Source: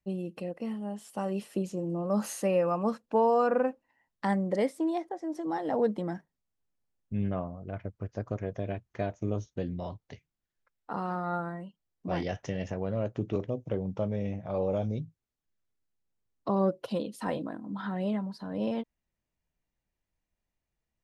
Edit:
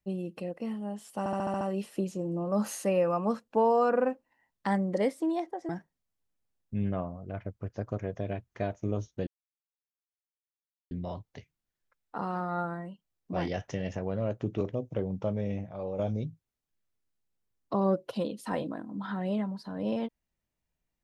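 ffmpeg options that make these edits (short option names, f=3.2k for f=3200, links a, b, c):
-filter_complex "[0:a]asplit=11[a][b][c][d][e][f][g][h][i][j][k];[a]atrim=end=1.262[l];[b]atrim=start=1.188:end=1.262[m];[c]atrim=start=1.188:end=1.262[n];[d]atrim=start=1.188:end=1.262[o];[e]atrim=start=1.188:end=1.262[p];[f]atrim=start=1.188:end=1.262[q];[g]atrim=start=1.188:end=5.272[r];[h]atrim=start=6.078:end=9.66,asetpts=PTS-STARTPTS,afade=t=out:st=3.578:d=0.004:c=hsin,apad=pad_dur=1.64[s];[i]atrim=start=9.66:end=14.442,asetpts=PTS-STARTPTS,afade=t=in:d=0.004:c=hsin[t];[j]atrim=start=14.438:end=14.742,asetpts=PTS-STARTPTS,volume=-6dB[u];[k]atrim=start=14.738[v];[l][m]acrossfade=d=0.004:c1=hsin:c2=hsin[w];[w][n]acrossfade=d=0.004:c1=hsin:c2=hsin[x];[x][o]acrossfade=d=0.004:c1=hsin:c2=hsin[y];[y][p]acrossfade=d=0.004:c1=hsin:c2=hsin[z];[z][q]acrossfade=d=0.004:c1=hsin:c2=hsin[aa];[aa][r]acrossfade=d=0.004:c1=hsin:c2=hsin[ab];[s][t]concat=n=2:v=0:a=1[ac];[ab][ac]acrossfade=d=0.004:c1=hsin:c2=hsin[ad];[ad][u]acrossfade=d=0.004:c1=hsin:c2=hsin[ae];[ae][v]acrossfade=d=0.004:c1=hsin:c2=hsin"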